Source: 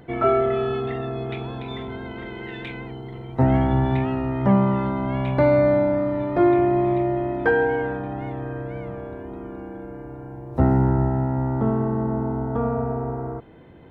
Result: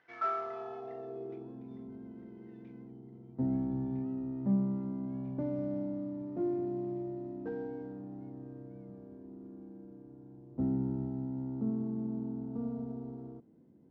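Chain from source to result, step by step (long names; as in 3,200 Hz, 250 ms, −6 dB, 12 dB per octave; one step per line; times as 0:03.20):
variable-slope delta modulation 32 kbit/s
band-pass filter sweep 1,700 Hz → 230 Hz, 0:00.10–0:01.67
level −8 dB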